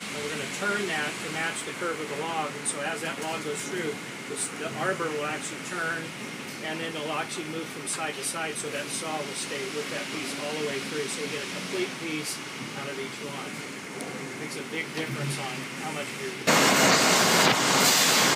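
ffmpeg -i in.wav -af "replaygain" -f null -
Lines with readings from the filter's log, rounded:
track_gain = +4.1 dB
track_peak = 0.274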